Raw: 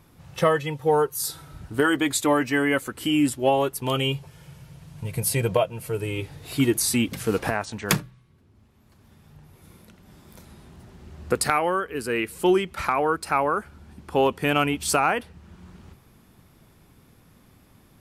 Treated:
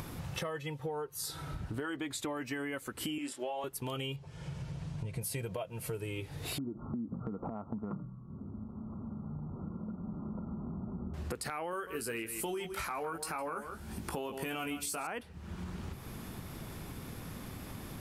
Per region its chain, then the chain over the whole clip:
0:00.79–0:02.37: high-shelf EQ 6,900 Hz −9 dB + downward compressor 1.5 to 1, threshold −26 dBFS
0:03.18–0:03.64: band-pass filter 440–7,700 Hz + double-tracking delay 28 ms −7.5 dB
0:04.16–0:05.21: Bessel low-pass filter 6,000 Hz, order 4 + parametric band 2,400 Hz −3.5 dB 2.7 octaves
0:06.58–0:11.14: Chebyshev low-pass filter 1,400 Hz, order 10 + downward compressor, threshold −32 dBFS + parametric band 210 Hz +11.5 dB 0.81 octaves
0:11.71–0:15.07: high-shelf EQ 6,800 Hz +11.5 dB + double-tracking delay 18 ms −5.5 dB + single-tap delay 157 ms −15.5 dB
whole clip: upward compression, threshold −26 dBFS; brickwall limiter −16 dBFS; downward compressor, threshold −31 dBFS; level −4 dB

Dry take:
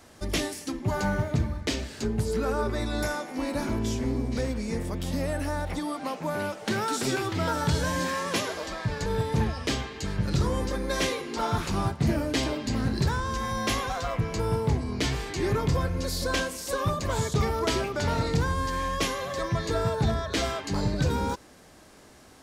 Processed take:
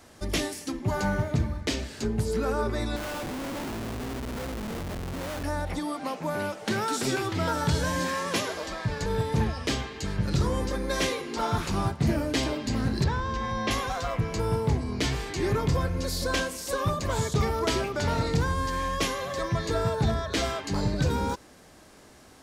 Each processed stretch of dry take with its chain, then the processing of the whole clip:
0:02.96–0:05.44: low-pass filter 1,400 Hz 6 dB per octave + low-shelf EQ 480 Hz −5.5 dB + comparator with hysteresis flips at −42 dBFS
0:13.04–0:13.71: low-pass filter 4,200 Hz + notch filter 1,400 Hz, Q 9.3
whole clip: no processing

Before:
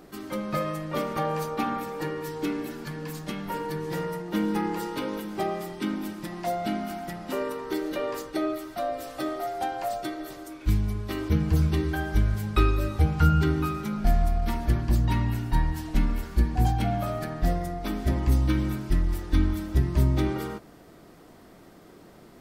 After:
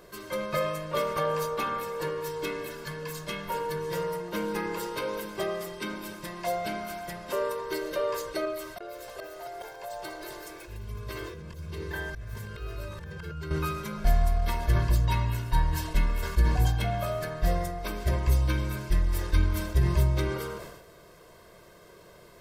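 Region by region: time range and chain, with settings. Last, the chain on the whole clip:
0:08.45–0:13.51: volume swells 505 ms + downward compressor 1.5 to 1, threshold −38 dBFS + delay with pitch and tempo change per echo 355 ms, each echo +2 semitones, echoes 2, each echo −6 dB
whole clip: low-shelf EQ 500 Hz −5.5 dB; comb filter 1.9 ms, depth 77%; level that may fall only so fast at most 54 dB per second

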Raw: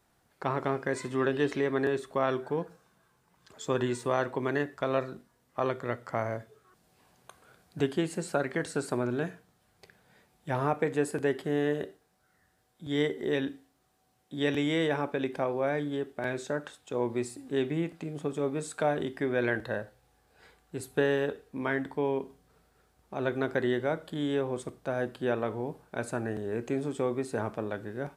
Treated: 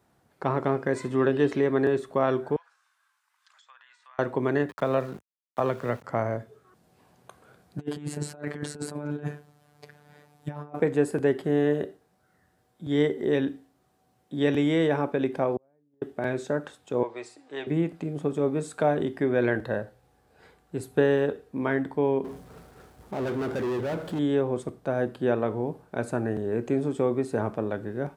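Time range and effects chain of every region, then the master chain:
0:02.56–0:04.19: inverse Chebyshev high-pass filter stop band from 350 Hz, stop band 60 dB + downward compressor 4 to 1, threshold −54 dBFS + treble cut that deepens with the level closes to 2,000 Hz, closed at −49 dBFS
0:04.69–0:06.04: parametric band 330 Hz −6 dB 0.36 octaves + centre clipping without the shift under −47 dBFS + multiband upward and downward compressor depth 40%
0:07.78–0:10.80: phases set to zero 147 Hz + compressor whose output falls as the input rises −37 dBFS, ratio −0.5
0:15.56–0:16.02: low-pass filter 1,100 Hz + gate with flip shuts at −27 dBFS, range −41 dB
0:17.03–0:17.67: three-way crossover with the lows and the highs turned down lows −23 dB, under 510 Hz, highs −22 dB, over 7,100 Hz + comb filter 6.4 ms, depth 40%
0:22.24–0:24.19: downward expander −60 dBFS + gain into a clipping stage and back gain 31 dB + power curve on the samples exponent 0.5
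whole clip: high-pass filter 70 Hz; tilt shelving filter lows +4 dB, about 1,200 Hz; level +2 dB

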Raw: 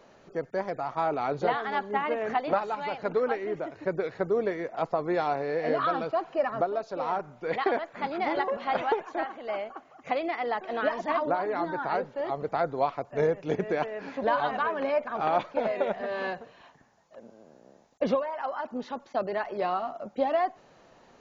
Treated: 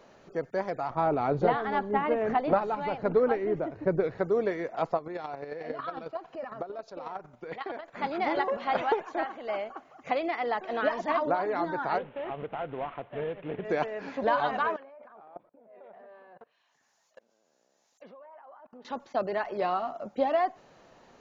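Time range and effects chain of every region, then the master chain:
0:00.90–0:04.18: spectral tilt −2.5 dB per octave + one half of a high-frequency compander decoder only
0:04.97–0:07.93: square-wave tremolo 11 Hz, depth 60%, duty 20% + downward compressor 1.5 to 1, threshold −40 dBFS
0:11.98–0:13.65: variable-slope delta modulation 16 kbit/s + downward compressor 2.5 to 1, threshold −33 dBFS
0:14.76–0:18.85: spectral tilt +4.5 dB per octave + output level in coarse steps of 24 dB + treble cut that deepens with the level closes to 340 Hz, closed at −42 dBFS
whole clip: no processing

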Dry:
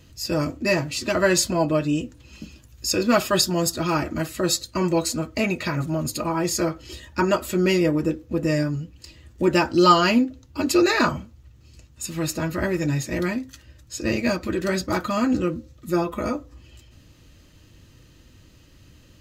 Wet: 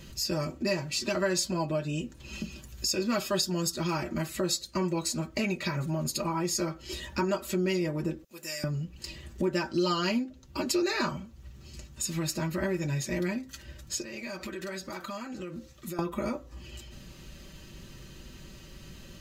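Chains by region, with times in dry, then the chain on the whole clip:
0:08.24–0:08.64: noise gate −44 dBFS, range −24 dB + first difference + upward compression, threshold −58 dBFS
0:14.02–0:15.99: low-shelf EQ 450 Hz −10 dB + downward compressor 10 to 1, threshold −39 dBFS
whole clip: dynamic equaliser 5,200 Hz, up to +4 dB, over −38 dBFS, Q 1.3; comb filter 5.2 ms; downward compressor 2.5 to 1, threshold −38 dBFS; level +4 dB

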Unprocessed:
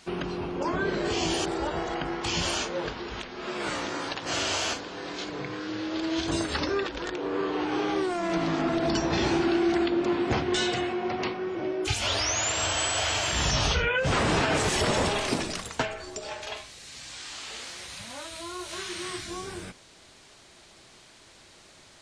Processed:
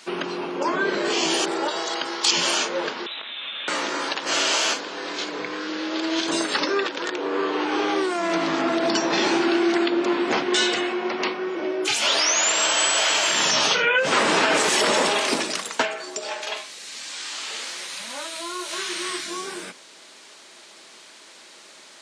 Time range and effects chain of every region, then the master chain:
0:01.68–0:02.31: high-pass filter 460 Hz 6 dB per octave + high shelf with overshoot 3,100 Hz +7.5 dB, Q 1.5
0:03.06–0:03.68: voice inversion scrambler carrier 3,900 Hz + downward compressor 4 to 1, threshold −37 dBFS
whole clip: high-pass filter 190 Hz 24 dB per octave; low-shelf EQ 270 Hz −10.5 dB; notch filter 730 Hz, Q 13; level +7.5 dB

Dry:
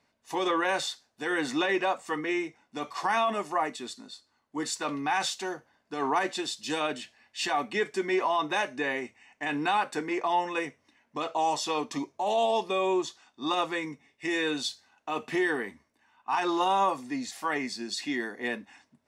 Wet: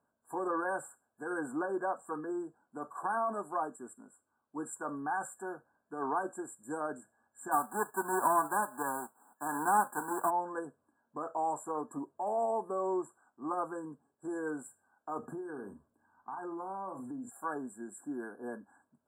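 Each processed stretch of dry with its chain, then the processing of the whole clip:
0:07.51–0:10.29: spectral envelope flattened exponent 0.3 + high-pass filter 190 Hz + parametric band 920 Hz +10 dB 0.92 octaves
0:15.19–0:17.30: low-shelf EQ 470 Hz +9.5 dB + double-tracking delay 42 ms −11 dB + downward compressor, threshold −32 dBFS
whole clip: low-shelf EQ 73 Hz −7.5 dB; brick-wall band-stop 1,700–7,200 Hz; level −6 dB

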